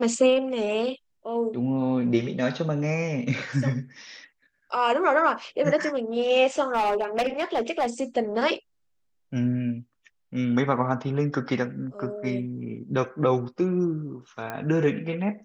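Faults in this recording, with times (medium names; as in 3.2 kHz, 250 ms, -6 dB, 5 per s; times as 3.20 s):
6.73–7.87 s: clipped -19.5 dBFS
14.50 s: pop -18 dBFS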